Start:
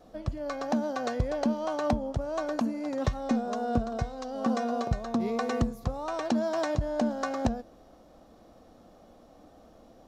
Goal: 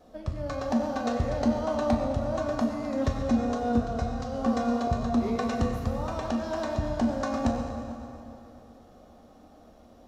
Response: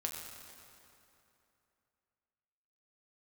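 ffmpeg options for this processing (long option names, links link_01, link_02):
-filter_complex "[0:a]asettb=1/sr,asplit=3[link_01][link_02][link_03];[link_01]atrim=end=6.074[link_04];[link_02]atrim=start=6.07:end=6.79,asetpts=PTS-STARTPTS,afade=type=in:duration=0.004:curve=qsin,afade=type=out:start_time=0.716:duration=0.004:curve=qsin,acrossover=split=1300|4600[link_05][link_06][link_07];[link_05]acompressor=threshold=-29dB:ratio=4[link_08];[link_06]acompressor=threshold=-41dB:ratio=4[link_09];[link_07]acompressor=threshold=-50dB:ratio=4[link_10];[link_08][link_09][link_10]amix=inputs=3:normalize=0[link_11];[link_03]atrim=start=6.786[link_12];[link_04][link_11]acrossfade=duration=0.004:curve1=hsin:curve2=qsin[link_13];[link_13][link_12]acrossfade=duration=0.004:curve1=qsin:curve2=hsin[link_14];[1:a]atrim=start_sample=2205[link_15];[link_14][link_15]afir=irnorm=-1:irlink=0"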